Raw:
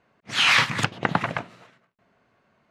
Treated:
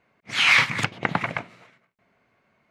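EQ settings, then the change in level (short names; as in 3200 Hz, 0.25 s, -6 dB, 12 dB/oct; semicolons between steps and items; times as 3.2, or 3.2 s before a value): bell 2200 Hz +8.5 dB 0.25 oct; -2.0 dB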